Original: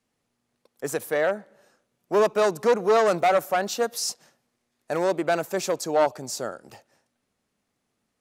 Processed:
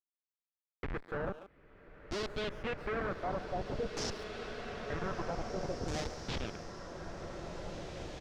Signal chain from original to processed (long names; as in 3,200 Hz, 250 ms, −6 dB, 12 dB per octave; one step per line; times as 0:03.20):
spectral magnitudes quantised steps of 15 dB
hum removal 130.4 Hz, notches 19
downward compressor 4 to 1, threshold −34 dBFS, peak gain reduction 15 dB
comparator with hysteresis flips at −31.5 dBFS
auto-filter low-pass saw down 0.51 Hz 470–6,800 Hz
far-end echo of a speakerphone 140 ms, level −15 dB
brickwall limiter −36 dBFS, peak gain reduction 8 dB
slow-attack reverb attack 2,260 ms, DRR 3.5 dB
level +6.5 dB